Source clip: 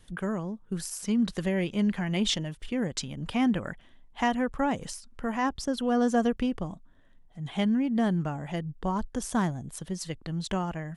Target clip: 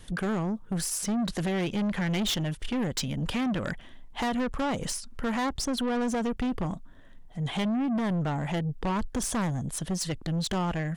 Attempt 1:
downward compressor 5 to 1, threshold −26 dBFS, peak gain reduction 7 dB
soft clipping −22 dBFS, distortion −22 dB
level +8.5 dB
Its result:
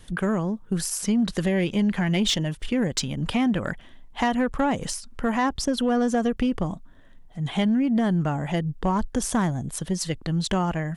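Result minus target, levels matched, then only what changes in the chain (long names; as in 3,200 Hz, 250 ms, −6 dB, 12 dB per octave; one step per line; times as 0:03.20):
soft clipping: distortion −13 dB
change: soft clipping −33.5 dBFS, distortion −9 dB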